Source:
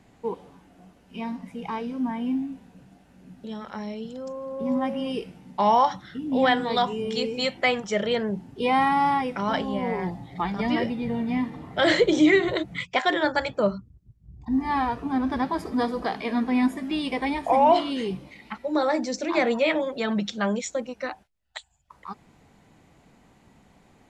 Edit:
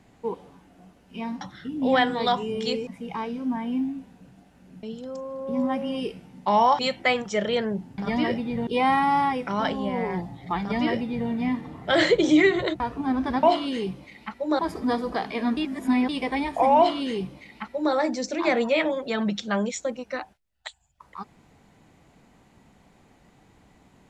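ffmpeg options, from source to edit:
-filter_complex "[0:a]asplit=12[s0][s1][s2][s3][s4][s5][s6][s7][s8][s9][s10][s11];[s0]atrim=end=1.412[s12];[s1]atrim=start=5.908:end=7.372[s13];[s2]atrim=start=1.408:end=3.372[s14];[s3]atrim=start=3.948:end=5.912[s15];[s4]atrim=start=7.368:end=8.562[s16];[s5]atrim=start=10.498:end=11.192[s17];[s6]atrim=start=8.558:end=12.692[s18];[s7]atrim=start=14.858:end=15.492[s19];[s8]atrim=start=17.668:end=18.832[s20];[s9]atrim=start=15.488:end=16.472[s21];[s10]atrim=start=16.468:end=16.992,asetpts=PTS-STARTPTS,areverse[s22];[s11]atrim=start=16.988[s23];[s12][s13]acrossfade=d=0.004:c1=hsin:c2=hsin[s24];[s24][s14]acrossfade=d=0.004:c1=hsin:c2=hsin[s25];[s25][s15]acrossfade=d=0.004:c1=hsin:c2=hsin[s26];[s26][s16]acrossfade=d=0.004:c1=hsin:c2=hsin[s27];[s27][s17]acrossfade=d=0.004:c1=hsin:c2=hsin[s28];[s28][s18]acrossfade=d=0.004:c1=hsin:c2=hsin[s29];[s29][s19]acrossfade=d=0.004:c1=hsin:c2=hsin[s30];[s30][s20]acrossfade=d=0.004:c1=hsin:c2=hsin[s31];[s31][s21]acrossfade=d=0.004:c1=hsin:c2=hsin[s32];[s32][s22]acrossfade=d=0.004:c1=hsin:c2=hsin[s33];[s33][s23]acrossfade=d=0.004:c1=hsin:c2=hsin"

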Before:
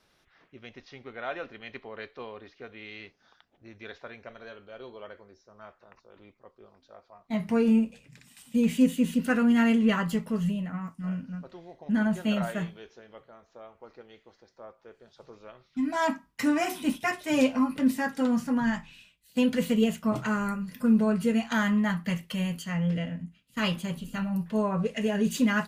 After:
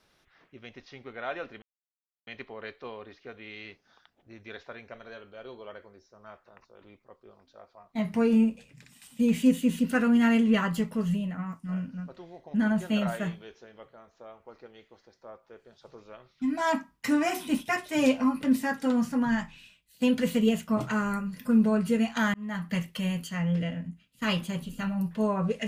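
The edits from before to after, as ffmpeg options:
-filter_complex "[0:a]asplit=3[s0][s1][s2];[s0]atrim=end=1.62,asetpts=PTS-STARTPTS,afade=t=out:st=1.616:d=0.004:c=hsin,apad=pad_dur=0.65[s3];[s1]atrim=start=1.62:end=21.69,asetpts=PTS-STARTPTS,afade=t=in:d=0.004:c=hsin,afade=t=out:st=20.066:d=0.004:c=hsin[s4];[s2]atrim=start=21.69,asetpts=PTS-STARTPTS,afade=t=in:d=0.4[s5];[s3][s4][s5]concat=n=3:v=0:a=1"

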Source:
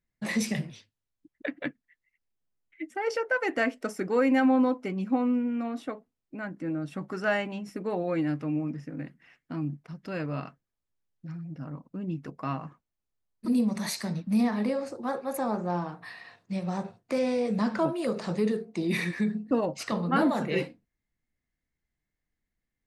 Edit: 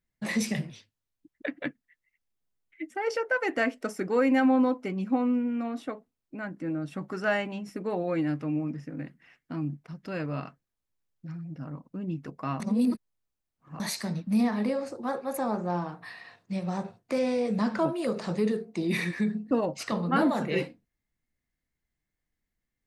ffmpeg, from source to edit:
-filter_complex "[0:a]asplit=3[s0][s1][s2];[s0]atrim=end=12.602[s3];[s1]atrim=start=12.598:end=13.802,asetpts=PTS-STARTPTS,areverse[s4];[s2]atrim=start=13.798[s5];[s3][s4]acrossfade=d=0.004:c1=hsin:c2=hsin[s6];[s6][s5]acrossfade=d=0.004:c1=hsin:c2=hsin"

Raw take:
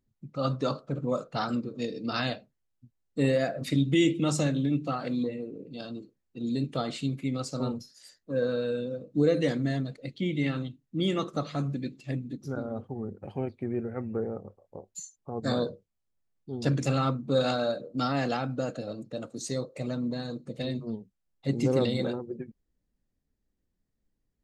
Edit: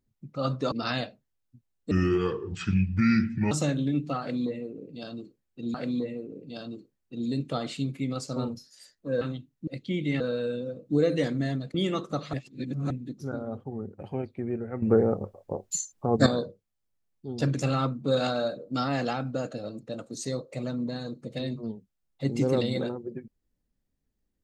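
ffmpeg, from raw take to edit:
-filter_complex "[0:a]asplit=13[s0][s1][s2][s3][s4][s5][s6][s7][s8][s9][s10][s11][s12];[s0]atrim=end=0.722[s13];[s1]atrim=start=2.008:end=3.204[s14];[s2]atrim=start=3.2:end=4.29,asetpts=PTS-STARTPTS,asetrate=29988,aresample=44100[s15];[s3]atrim=start=4.286:end=6.522[s16];[s4]atrim=start=4.978:end=8.452[s17];[s5]atrim=start=10.518:end=10.982[s18];[s6]atrim=start=9.988:end=10.522[s19];[s7]atrim=start=8.448:end=9.992[s20];[s8]atrim=start=10.978:end=11.572[s21];[s9]atrim=start=11.568:end=12.142,asetpts=PTS-STARTPTS,areverse[s22];[s10]atrim=start=12.138:end=14.062[s23];[s11]atrim=start=14.058:end=15.502,asetpts=PTS-STARTPTS,volume=3.35[s24];[s12]atrim=start=15.498[s25];[s13][s14]acrossfade=d=0.004:c1=hsin:c2=hsin[s26];[s26][s15]acrossfade=d=0.004:c1=hsin:c2=hsin[s27];[s27][s16]acrossfade=d=0.004:c1=hsin:c2=hsin[s28];[s28][s17]acrossfade=d=0.004:c1=hsin:c2=hsin[s29];[s29][s18]acrossfade=d=0.004:c1=hsin:c2=hsin[s30];[s30][s19]acrossfade=d=0.004:c1=hsin:c2=hsin[s31];[s31][s20]acrossfade=d=0.004:c1=hsin:c2=hsin[s32];[s32][s21]acrossfade=d=0.004:c1=hsin:c2=hsin[s33];[s33][s22]acrossfade=d=0.004:c1=hsin:c2=hsin[s34];[s34][s23]acrossfade=d=0.004:c1=hsin:c2=hsin[s35];[s35][s24]acrossfade=d=0.004:c1=hsin:c2=hsin[s36];[s36][s25]acrossfade=d=0.004:c1=hsin:c2=hsin"

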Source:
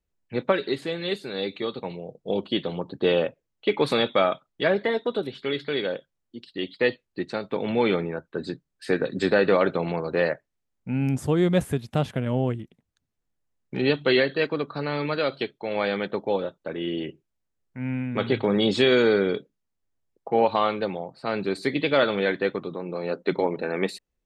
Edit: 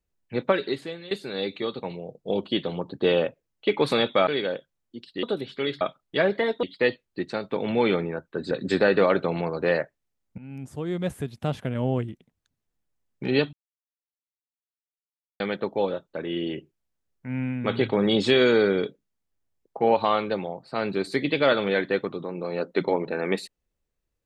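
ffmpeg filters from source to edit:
-filter_complex "[0:a]asplit=10[s0][s1][s2][s3][s4][s5][s6][s7][s8][s9];[s0]atrim=end=1.11,asetpts=PTS-STARTPTS,afade=t=out:st=0.64:d=0.47:silence=0.158489[s10];[s1]atrim=start=1.11:end=4.272,asetpts=PTS-STARTPTS,afade=t=in:d=0.004:c=hsin:silence=0.158489[s11];[s2]atrim=start=5.668:end=6.632[s12];[s3]atrim=start=5.088:end=5.672[s13];[s4]atrim=start=4.268:end=5.092[s14];[s5]atrim=start=6.628:end=8.512[s15];[s6]atrim=start=9.018:end=10.89,asetpts=PTS-STARTPTS,afade=t=out:st=1.868:d=0.004:c=hsin:silence=0.112202[s16];[s7]atrim=start=10.89:end=14.04,asetpts=PTS-STARTPTS,afade=t=in:d=1.69:silence=0.112202,afade=t=out:st=3.146:d=0.004:c=hsin[s17];[s8]atrim=start=14.04:end=15.91,asetpts=PTS-STARTPTS,volume=0[s18];[s9]atrim=start=15.91,asetpts=PTS-STARTPTS,afade=t=in:d=0.004:c=hsin[s19];[s10][s11]concat=n=2:v=0:a=1[s20];[s20][s12]acrossfade=d=0.004:c1=hsin:c2=hsin[s21];[s21][s13]acrossfade=d=0.004:c1=hsin:c2=hsin[s22];[s22][s14]acrossfade=d=0.004:c1=hsin:c2=hsin[s23];[s23][s15]acrossfade=d=0.004:c1=hsin:c2=hsin[s24];[s16][s17][s18][s19]concat=n=4:v=0:a=1[s25];[s24][s25]acrossfade=d=0.004:c1=hsin:c2=hsin"

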